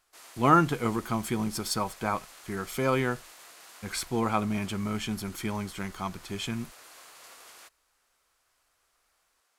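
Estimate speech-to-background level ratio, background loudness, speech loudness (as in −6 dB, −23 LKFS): 19.5 dB, −49.0 LKFS, −29.5 LKFS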